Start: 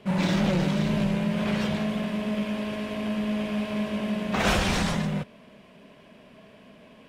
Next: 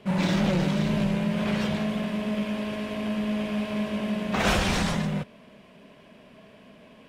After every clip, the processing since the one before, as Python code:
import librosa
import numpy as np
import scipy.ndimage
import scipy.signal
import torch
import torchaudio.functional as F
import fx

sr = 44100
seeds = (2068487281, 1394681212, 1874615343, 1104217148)

y = x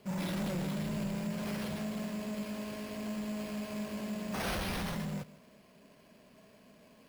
y = 10.0 ** (-21.0 / 20.0) * np.tanh(x / 10.0 ** (-21.0 / 20.0))
y = y + 10.0 ** (-19.0 / 20.0) * np.pad(y, (int(158 * sr / 1000.0), 0))[:len(y)]
y = np.repeat(y[::6], 6)[:len(y)]
y = F.gain(torch.from_numpy(y), -8.5).numpy()